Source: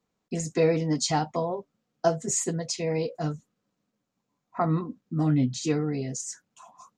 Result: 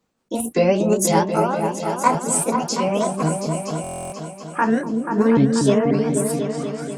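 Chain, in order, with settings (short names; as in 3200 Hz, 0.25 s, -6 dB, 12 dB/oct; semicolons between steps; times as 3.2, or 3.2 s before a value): repeated pitch sweeps +8 st, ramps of 0.537 s; repeats that get brighter 0.242 s, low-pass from 400 Hz, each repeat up 2 oct, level -3 dB; stuck buffer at 3.82, samples 1024, times 12; gain +7.5 dB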